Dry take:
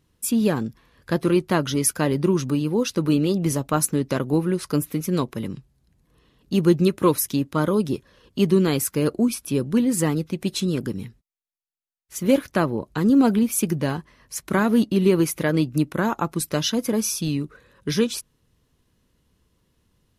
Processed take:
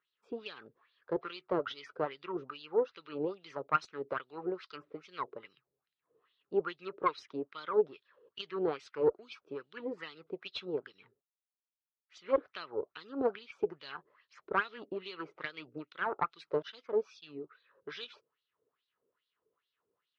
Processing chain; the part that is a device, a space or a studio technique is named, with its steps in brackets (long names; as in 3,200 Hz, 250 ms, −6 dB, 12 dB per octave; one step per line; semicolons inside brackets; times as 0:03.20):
0:16.62–0:17.44: downward expander −20 dBFS
low-shelf EQ 430 Hz −2.5 dB
wah-wah guitar rig (LFO wah 2.4 Hz 430–4,000 Hz, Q 3.5; tube saturation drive 19 dB, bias 0.7; loudspeaker in its box 79–4,600 Hz, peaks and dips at 220 Hz −6 dB, 420 Hz +7 dB, 1,300 Hz +8 dB)